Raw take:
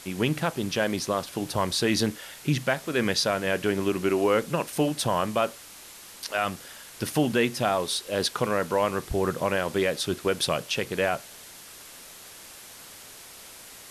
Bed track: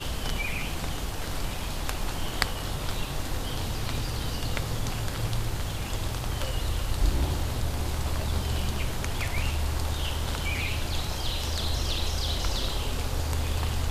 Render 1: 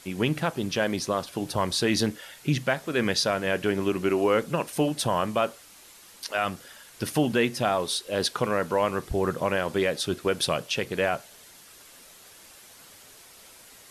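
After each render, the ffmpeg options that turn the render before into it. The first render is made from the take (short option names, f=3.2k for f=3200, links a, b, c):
-af "afftdn=nr=6:nf=-46"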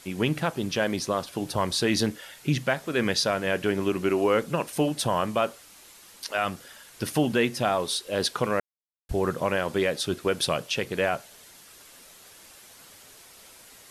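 -filter_complex "[0:a]asplit=3[a][b][c];[a]atrim=end=8.6,asetpts=PTS-STARTPTS,afade=t=out:st=8.596:d=0.004:c=hsin[d];[b]atrim=start=8.6:end=9.09,asetpts=PTS-STARTPTS,volume=0[e];[c]atrim=start=9.09,asetpts=PTS-STARTPTS,afade=t=in:d=0.004:c=hsin[f];[d][e][f]concat=n=3:v=0:a=1"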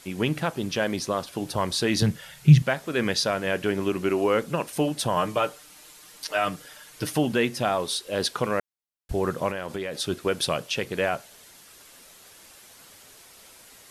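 -filter_complex "[0:a]asettb=1/sr,asplit=3[a][b][c];[a]atrim=end=2.024[d];[b]atrim=start=2.02:end=2.62,asetpts=PTS-STARTPTS,afade=t=in:d=0.004:c=qsin,afade=t=out:st=0.596:d=0.004:c=qsin,lowshelf=f=210:t=q:w=3:g=8[e];[c]atrim=start=2.616[f];[d][e]acrossfade=d=0.004:c1=hsin:c2=qsin[g];[g][f]acrossfade=d=0.004:c1=qsin:c2=hsin,asettb=1/sr,asplit=3[h][i][j];[h]atrim=end=5.164[k];[i]atrim=start=5.16:end=7.15,asetpts=PTS-STARTPTS,afade=t=in:d=0.004:c=qsin,afade=t=out:st=1.986:d=0.004:c=qsin,aecho=1:1:6.6:0.65,atrim=end_sample=87759[l];[j]atrim=start=7.146[m];[k][l]acrossfade=d=0.004:c1=hsin:c2=qsin[n];[n][m]acrossfade=d=0.004:c1=qsin:c2=hsin,asettb=1/sr,asplit=3[o][p][q];[o]atrim=end=9.504[r];[p]atrim=start=9.5:end=10,asetpts=PTS-STARTPTS,afade=t=in:d=0.004:c=qsin,afade=t=out:st=0.496:d=0.004:c=qsin,acompressor=threshold=-27dB:ratio=6:attack=3.2:release=140:knee=1:detection=peak[s];[q]atrim=start=9.996[t];[r][s]acrossfade=d=0.004:c1=hsin:c2=qsin[u];[u][t]acrossfade=d=0.004:c1=qsin:c2=hsin"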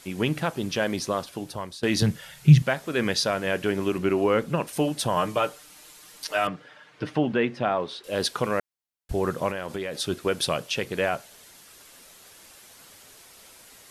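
-filter_complex "[0:a]asettb=1/sr,asplit=3[a][b][c];[a]atrim=end=3.984[d];[b]atrim=start=3.98:end=4.67,asetpts=PTS-STARTPTS,afade=t=in:d=0.004:c=qsin,afade=t=out:st=0.686:d=0.004:c=qsin,bass=f=250:g=4,treble=f=4k:g=-5[e];[c]atrim=start=4.666[f];[d][e]acrossfade=d=0.004:c1=hsin:c2=qsin[g];[g][f]acrossfade=d=0.004:c1=qsin:c2=hsin,asettb=1/sr,asplit=3[h][i][j];[h]atrim=end=6.474[k];[i]atrim=start=6.47:end=8.04,asetpts=PTS-STARTPTS,afade=t=in:d=0.004:c=qsin,afade=t=out:st=1.566:d=0.004:c=qsin,highpass=110,lowpass=2.5k[l];[j]atrim=start=8.036[m];[k][l]acrossfade=d=0.004:c1=hsin:c2=qsin[n];[n][m]acrossfade=d=0.004:c1=qsin:c2=hsin,asplit=2[o][p];[o]atrim=end=1.83,asetpts=PTS-STARTPTS,afade=t=out:st=1.15:d=0.68:silence=0.112202[q];[p]atrim=start=1.83,asetpts=PTS-STARTPTS,afade=t=in:d=0.004:c=hsin:silence=0.112202[r];[q][r]concat=n=2:v=0:a=1"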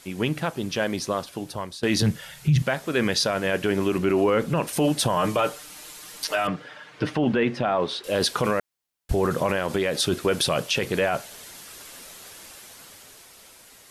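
-af "dynaudnorm=f=340:g=9:m=8dB,alimiter=limit=-13dB:level=0:latency=1:release=15"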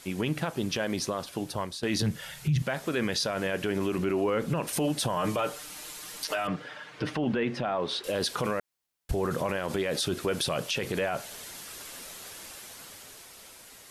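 -af "acompressor=threshold=-25dB:ratio=2,alimiter=limit=-19.5dB:level=0:latency=1:release=36"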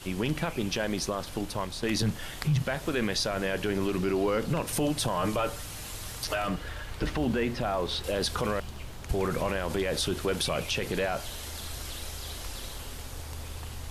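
-filter_complex "[1:a]volume=-11.5dB[a];[0:a][a]amix=inputs=2:normalize=0"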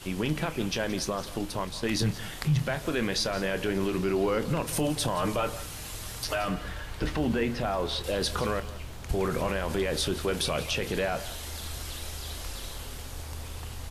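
-filter_complex "[0:a]asplit=2[a][b];[b]adelay=26,volume=-13dB[c];[a][c]amix=inputs=2:normalize=0,aecho=1:1:172:0.158"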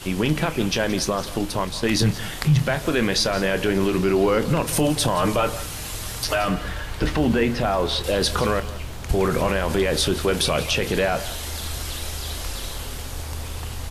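-af "volume=7.5dB"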